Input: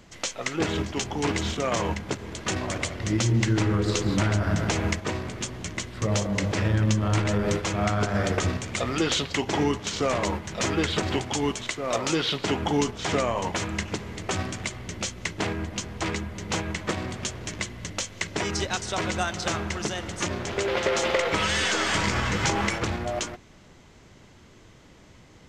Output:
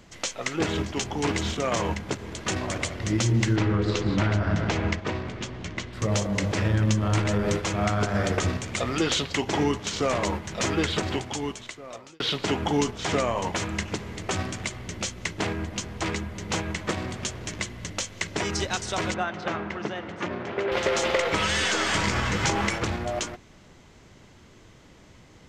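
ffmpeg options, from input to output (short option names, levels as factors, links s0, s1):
-filter_complex "[0:a]asettb=1/sr,asplit=3[s0][s1][s2];[s0]atrim=end=3.564[s3];[s1]atrim=start=3.56:end=5.93,asetpts=PTS-STARTPTS,afade=t=in:d=0.004:c=qsin,afade=t=out:st=2.366:d=0.004:c=qsin,lowpass=4400[s4];[s2]atrim=start=5.926[s5];[s3][s4]acrossfade=d=0.004:c1=hsin:c2=qsin[s6];[s6][s5]acrossfade=d=0.004:c1=qsin:c2=hsin,asettb=1/sr,asplit=3[s7][s8][s9];[s7]atrim=end=19.144[s10];[s8]atrim=start=19.14:end=20.72,asetpts=PTS-STARTPTS,afade=t=in:d=0.004:c=qsin,afade=t=out:st=1.576:d=0.004:c=qsin,highpass=150,lowpass=2300[s11];[s9]atrim=start=20.716[s12];[s10][s11]acrossfade=d=0.004:c1=hsin:c2=qsin[s13];[s13][s12]acrossfade=d=0.004:c1=qsin:c2=hsin,asplit=2[s14][s15];[s14]atrim=end=12.2,asetpts=PTS-STARTPTS,afade=t=out:st=10.88:d=1.32[s16];[s15]atrim=start=12.2,asetpts=PTS-STARTPTS,afade=t=in:d=0.004:c=hsin[s17];[s16][s17]concat=n=2:v=0:a=1"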